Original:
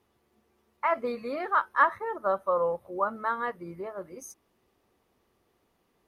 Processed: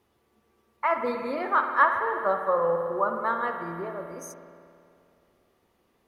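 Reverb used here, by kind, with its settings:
spring reverb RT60 2.4 s, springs 53 ms, chirp 30 ms, DRR 4.5 dB
level +1.5 dB

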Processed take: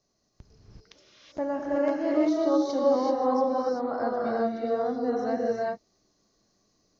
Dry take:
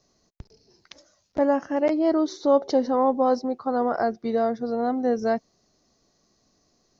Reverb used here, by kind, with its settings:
reverb whose tail is shaped and stops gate 410 ms rising, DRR −4 dB
level −8.5 dB

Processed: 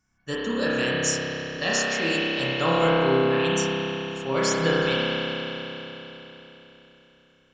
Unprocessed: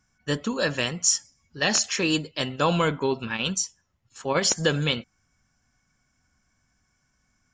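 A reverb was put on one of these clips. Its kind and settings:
spring reverb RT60 3.9 s, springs 30 ms, chirp 65 ms, DRR −8 dB
level −5.5 dB

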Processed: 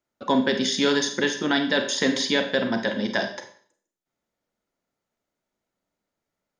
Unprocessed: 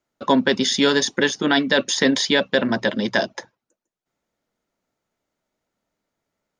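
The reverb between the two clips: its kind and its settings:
four-comb reverb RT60 0.5 s, combs from 31 ms, DRR 6 dB
level −5 dB

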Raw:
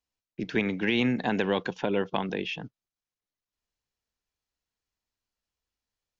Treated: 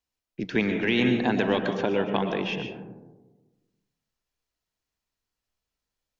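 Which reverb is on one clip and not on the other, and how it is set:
comb and all-pass reverb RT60 1.2 s, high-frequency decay 0.25×, pre-delay 85 ms, DRR 5 dB
level +1.5 dB

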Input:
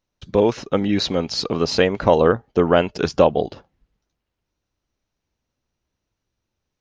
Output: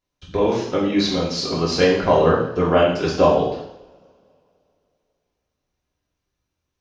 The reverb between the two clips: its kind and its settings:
coupled-rooms reverb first 0.71 s, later 2.8 s, from −28 dB, DRR −6 dB
level −6 dB

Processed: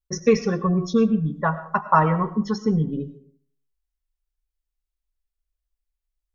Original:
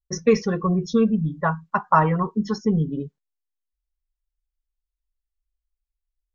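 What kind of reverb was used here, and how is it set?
comb and all-pass reverb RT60 0.56 s, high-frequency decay 0.55×, pre-delay 60 ms, DRR 13.5 dB

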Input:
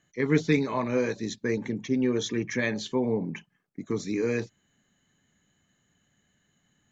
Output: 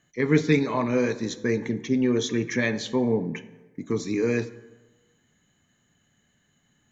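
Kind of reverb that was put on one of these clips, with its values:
dense smooth reverb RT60 1.2 s, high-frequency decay 0.55×, DRR 13 dB
level +2.5 dB

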